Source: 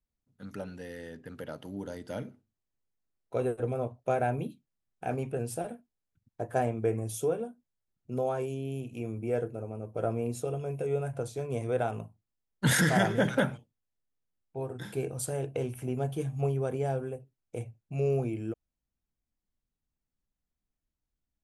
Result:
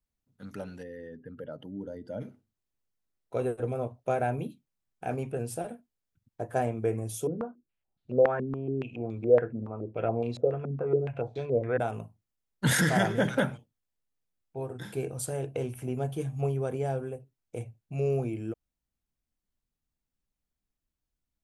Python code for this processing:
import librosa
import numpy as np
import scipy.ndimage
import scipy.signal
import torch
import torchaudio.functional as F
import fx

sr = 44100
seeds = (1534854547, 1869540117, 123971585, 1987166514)

y = fx.spec_expand(x, sr, power=1.6, at=(0.82, 2.2), fade=0.02)
y = fx.filter_held_lowpass(y, sr, hz=7.1, low_hz=240.0, high_hz=3900.0, at=(7.27, 11.8))